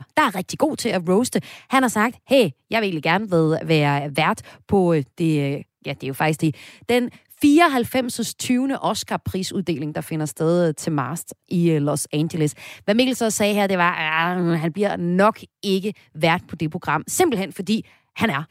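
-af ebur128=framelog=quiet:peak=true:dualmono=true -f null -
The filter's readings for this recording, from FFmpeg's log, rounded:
Integrated loudness:
  I:         -18.0 LUFS
  Threshold: -28.1 LUFS
Loudness range:
  LRA:         3.0 LU
  Threshold: -38.0 LUFS
  LRA low:   -19.8 LUFS
  LRA high:  -16.8 LUFS
True peak:
  Peak:       -2.5 dBFS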